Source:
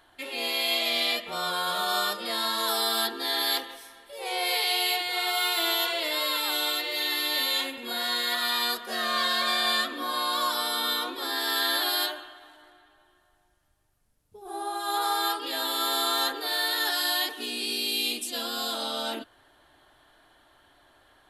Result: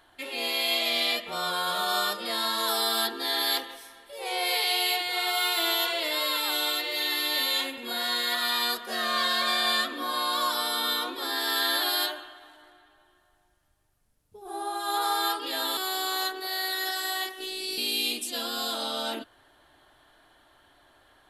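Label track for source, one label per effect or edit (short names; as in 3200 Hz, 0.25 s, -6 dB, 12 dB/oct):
15.770000	17.780000	robotiser 378 Hz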